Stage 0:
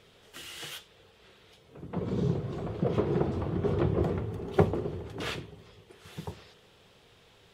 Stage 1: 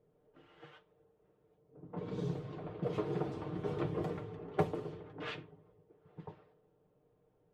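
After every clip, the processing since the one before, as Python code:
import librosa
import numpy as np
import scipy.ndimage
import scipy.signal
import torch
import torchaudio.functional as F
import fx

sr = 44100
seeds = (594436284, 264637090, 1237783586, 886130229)

y = fx.env_lowpass(x, sr, base_hz=470.0, full_db=-25.5)
y = fx.low_shelf(y, sr, hz=200.0, db=-8.0)
y = y + 0.59 * np.pad(y, (int(6.6 * sr / 1000.0), 0))[:len(y)]
y = y * 10.0 ** (-7.0 / 20.0)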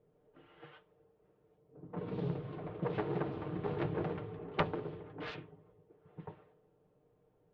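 y = fx.self_delay(x, sr, depth_ms=0.79)
y = scipy.signal.sosfilt(scipy.signal.butter(4, 3600.0, 'lowpass', fs=sr, output='sos'), y)
y = y * 10.0 ** (1.0 / 20.0)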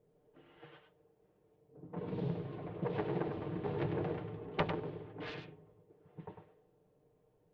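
y = fx.peak_eq(x, sr, hz=1300.0, db=-4.5, octaves=0.38)
y = y + 10.0 ** (-7.0 / 20.0) * np.pad(y, (int(100 * sr / 1000.0), 0))[:len(y)]
y = y * 10.0 ** (-1.0 / 20.0)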